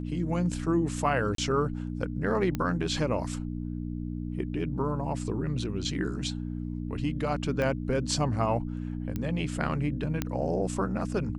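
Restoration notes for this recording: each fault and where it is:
mains hum 60 Hz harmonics 5 −34 dBFS
0:01.35–0:01.38: drop-out 33 ms
0:02.55: click −17 dBFS
0:07.62: click −18 dBFS
0:09.16: click −19 dBFS
0:10.22: click −13 dBFS

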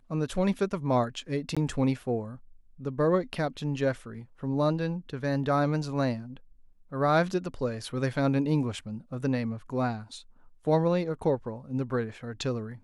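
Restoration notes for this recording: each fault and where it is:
0:01.55–0:01.57: drop-out 16 ms

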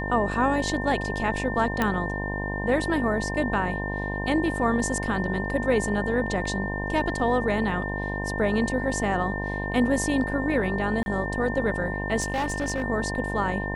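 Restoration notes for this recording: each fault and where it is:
mains buzz 50 Hz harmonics 21 −31 dBFS
whistle 1,800 Hz −32 dBFS
0:01.82: click −10 dBFS
0:11.03–0:11.06: drop-out 31 ms
0:12.20–0:12.84: clipping −22.5 dBFS

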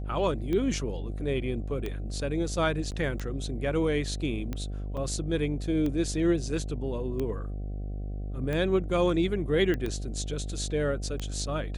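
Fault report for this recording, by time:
mains buzz 50 Hz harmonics 15 −34 dBFS
scratch tick 45 rpm −20 dBFS
0:02.91–0:02.92: drop-out 8.8 ms
0:04.97–0:04.98: drop-out 5.4 ms
0:09.74: click −18 dBFS

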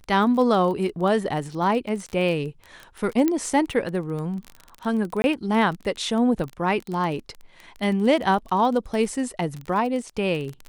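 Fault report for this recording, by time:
surface crackle 20 per second −28 dBFS
0:03.28: click −10 dBFS
0:05.22–0:05.24: drop-out 21 ms

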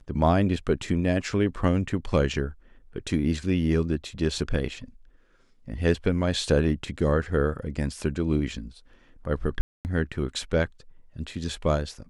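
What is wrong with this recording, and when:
0:09.61–0:09.85: drop-out 239 ms

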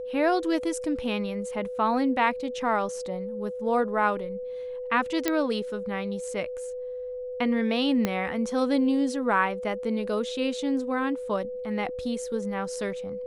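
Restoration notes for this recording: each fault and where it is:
whistle 500 Hz −32 dBFS
0:05.28: click −9 dBFS
0:08.05: click −11 dBFS

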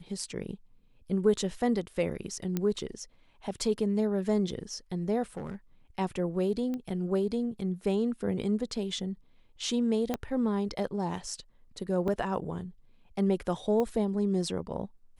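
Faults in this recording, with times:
0:02.57: click −16 dBFS
0:05.37–0:05.55: clipping −32.5 dBFS
0:06.74: click −24 dBFS
0:10.14: click −16 dBFS
0:12.08: drop-out 2.7 ms
0:13.80: click −19 dBFS

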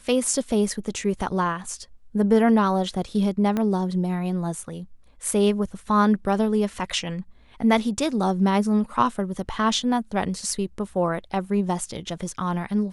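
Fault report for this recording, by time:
0:03.57: click −13 dBFS

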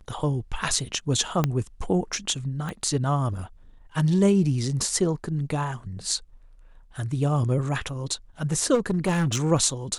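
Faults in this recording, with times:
0:01.44: click −9 dBFS
0:02.69: click −20 dBFS
0:08.74–0:09.44: clipping −19 dBFS

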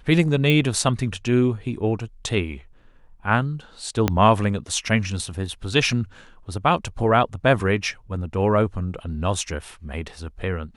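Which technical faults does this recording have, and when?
0:00.50: click −9 dBFS
0:04.08: click −5 dBFS

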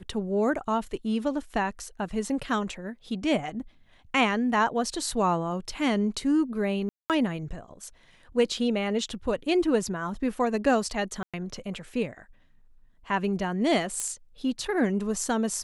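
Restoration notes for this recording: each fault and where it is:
0:06.89–0:07.10: drop-out 208 ms
0:11.23–0:11.34: drop-out 106 ms
0:14.00: click −16 dBFS

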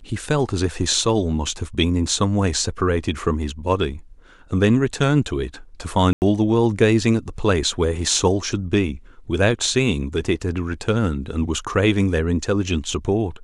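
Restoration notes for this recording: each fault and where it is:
0:06.13–0:06.22: drop-out 89 ms

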